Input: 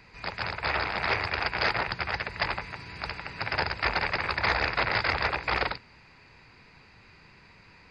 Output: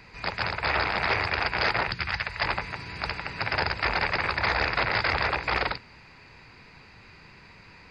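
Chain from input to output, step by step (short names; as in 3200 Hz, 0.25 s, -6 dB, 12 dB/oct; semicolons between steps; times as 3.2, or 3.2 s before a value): 1.9–2.41 bell 870 Hz -> 220 Hz -13 dB 1.6 oct; limiter -18.5 dBFS, peak gain reduction 5.5 dB; gain +4 dB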